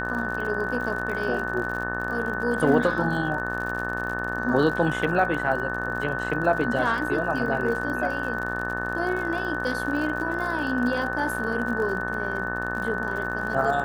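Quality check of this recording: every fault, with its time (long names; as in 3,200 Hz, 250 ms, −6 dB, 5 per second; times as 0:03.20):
mains buzz 60 Hz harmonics 30 −32 dBFS
surface crackle 58 per second −32 dBFS
whistle 1,500 Hz −30 dBFS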